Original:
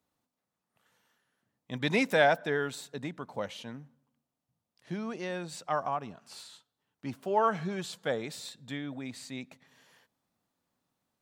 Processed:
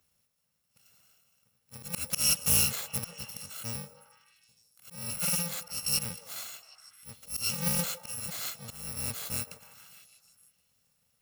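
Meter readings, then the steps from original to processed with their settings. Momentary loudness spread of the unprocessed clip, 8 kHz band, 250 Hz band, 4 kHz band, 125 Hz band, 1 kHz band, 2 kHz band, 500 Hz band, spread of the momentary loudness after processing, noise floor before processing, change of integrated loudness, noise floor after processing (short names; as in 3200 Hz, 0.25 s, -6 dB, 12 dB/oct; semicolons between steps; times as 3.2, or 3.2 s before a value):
19 LU, +18.0 dB, -6.5 dB, +6.5 dB, +1.5 dB, -13.5 dB, -7.0 dB, -15.5 dB, 21 LU, under -85 dBFS, +2.0 dB, -76 dBFS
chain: FFT order left unsorted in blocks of 128 samples; auto swell 0.363 s; on a send: delay with a stepping band-pass 0.153 s, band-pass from 530 Hz, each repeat 0.7 oct, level -8 dB; on the sum: Doppler distortion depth 0.17 ms; gain +8.5 dB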